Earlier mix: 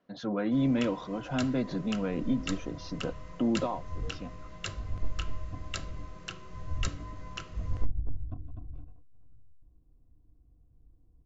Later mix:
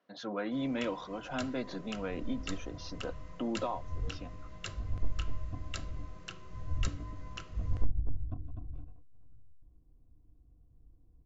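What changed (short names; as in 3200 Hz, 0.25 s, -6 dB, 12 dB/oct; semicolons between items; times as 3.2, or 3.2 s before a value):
speech: add HPF 570 Hz 6 dB/oct; first sound -4.5 dB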